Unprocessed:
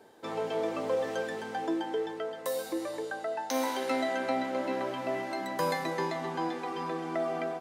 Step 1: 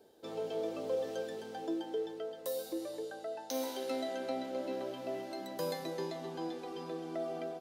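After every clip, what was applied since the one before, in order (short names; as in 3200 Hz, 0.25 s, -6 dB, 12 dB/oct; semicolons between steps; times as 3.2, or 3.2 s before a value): graphic EQ 125/250/1000/2000/8000 Hz -7/-5/-12/-12/-6 dB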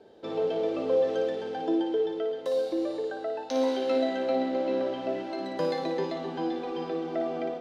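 LPF 3500 Hz 12 dB/oct; on a send: flutter echo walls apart 9.8 m, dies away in 0.55 s; on the sum: gain +8 dB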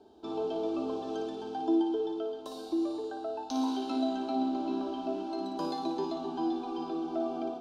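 bell 71 Hz +8 dB 1.7 oct; fixed phaser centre 520 Hz, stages 6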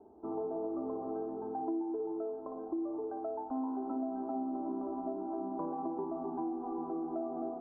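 steep low-pass 1200 Hz 36 dB/oct; compressor 4:1, threshold -34 dBFS, peak gain reduction 9.5 dB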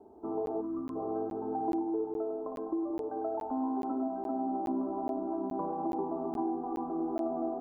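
split-band echo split 340 Hz, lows 0.173 s, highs 0.102 s, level -6.5 dB; spectral gain 0.61–0.96, 350–940 Hz -17 dB; crackling interface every 0.42 s, samples 512, zero, from 0.46; gain +2.5 dB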